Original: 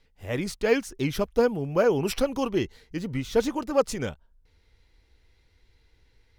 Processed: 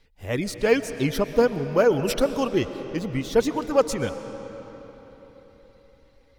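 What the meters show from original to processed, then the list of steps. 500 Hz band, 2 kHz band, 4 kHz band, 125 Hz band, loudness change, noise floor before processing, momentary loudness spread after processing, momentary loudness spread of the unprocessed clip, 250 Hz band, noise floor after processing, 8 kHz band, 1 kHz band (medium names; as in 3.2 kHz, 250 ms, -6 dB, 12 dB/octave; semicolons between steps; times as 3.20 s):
+3.0 dB, +3.0 dB, +2.5 dB, +2.5 dB, +3.0 dB, -64 dBFS, 15 LU, 10 LU, +2.5 dB, -58 dBFS, +3.0 dB, +3.0 dB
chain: reverb removal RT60 0.6 s; algorithmic reverb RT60 4.4 s, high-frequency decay 0.7×, pre-delay 85 ms, DRR 10.5 dB; trim +3 dB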